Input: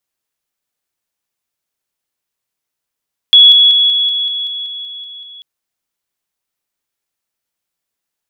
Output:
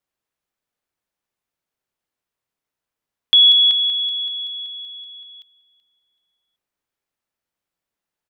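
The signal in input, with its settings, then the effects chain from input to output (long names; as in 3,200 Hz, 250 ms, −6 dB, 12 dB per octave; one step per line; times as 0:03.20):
level staircase 3,370 Hz −1.5 dBFS, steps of −3 dB, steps 11, 0.19 s 0.00 s
high-shelf EQ 3,000 Hz −10 dB
repeating echo 380 ms, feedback 31%, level −16.5 dB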